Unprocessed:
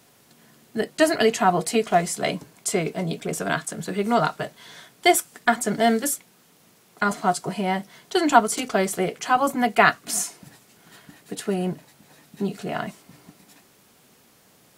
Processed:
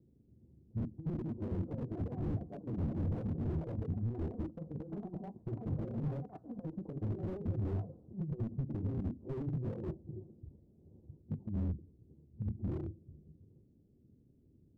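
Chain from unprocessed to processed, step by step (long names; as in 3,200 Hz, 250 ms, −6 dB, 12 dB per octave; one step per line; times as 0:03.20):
pitch shift by two crossfaded delay taps −11.5 semitones
inverse Chebyshev low-pass filter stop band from 1,600 Hz, stop band 70 dB
compressor whose output falls as the input rises −27 dBFS, ratio −0.5
delay with pitch and tempo change per echo 706 ms, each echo +6 semitones, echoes 2, each echo −6 dB
convolution reverb RT60 0.35 s, pre-delay 6 ms, DRR 20.5 dB
slew-rate limiting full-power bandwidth 8.9 Hz
level −6.5 dB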